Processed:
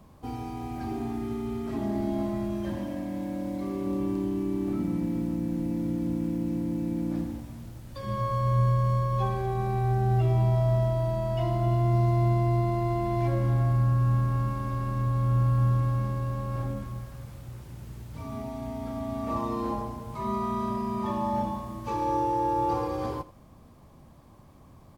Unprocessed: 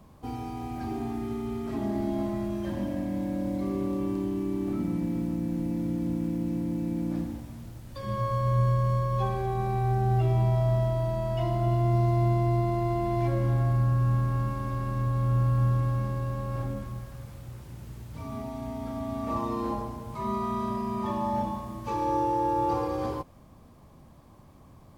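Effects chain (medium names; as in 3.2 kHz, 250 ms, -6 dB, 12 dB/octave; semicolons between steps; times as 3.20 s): 2.76–3.86 s: bass shelf 240 Hz -6.5 dB; on a send: delay 83 ms -18 dB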